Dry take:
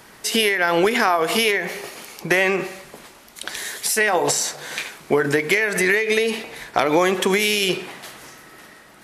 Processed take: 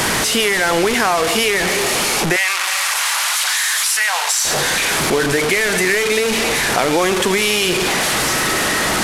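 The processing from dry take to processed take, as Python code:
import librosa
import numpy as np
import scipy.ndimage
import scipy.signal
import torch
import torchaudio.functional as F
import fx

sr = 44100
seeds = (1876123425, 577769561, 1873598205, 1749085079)

y = fx.delta_mod(x, sr, bps=64000, step_db=-15.0)
y = fx.highpass(y, sr, hz=920.0, slope=24, at=(2.36, 4.45))
y = fx.env_flatten(y, sr, amount_pct=50)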